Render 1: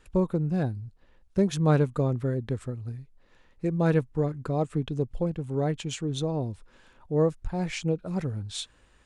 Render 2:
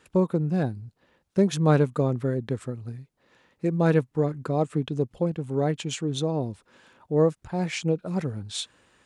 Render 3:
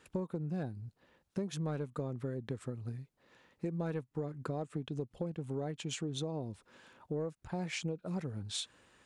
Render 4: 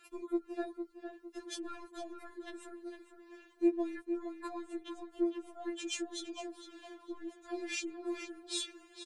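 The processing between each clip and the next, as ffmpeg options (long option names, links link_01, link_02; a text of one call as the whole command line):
ffmpeg -i in.wav -af "highpass=130,volume=3dB" out.wav
ffmpeg -i in.wav -af "asoftclip=type=tanh:threshold=-9dB,acompressor=threshold=-31dB:ratio=6,volume=-3.5dB" out.wav
ffmpeg -i in.wav -filter_complex "[0:a]asplit=2[link_01][link_02];[link_02]adelay=457,lowpass=frequency=3500:poles=1,volume=-8dB,asplit=2[link_03][link_04];[link_04]adelay=457,lowpass=frequency=3500:poles=1,volume=0.37,asplit=2[link_05][link_06];[link_06]adelay=457,lowpass=frequency=3500:poles=1,volume=0.37,asplit=2[link_07][link_08];[link_08]adelay=457,lowpass=frequency=3500:poles=1,volume=0.37[link_09];[link_03][link_05][link_07][link_09]amix=inputs=4:normalize=0[link_10];[link_01][link_10]amix=inputs=2:normalize=0,afftfilt=real='re*4*eq(mod(b,16),0)':imag='im*4*eq(mod(b,16),0)':win_size=2048:overlap=0.75,volume=4.5dB" out.wav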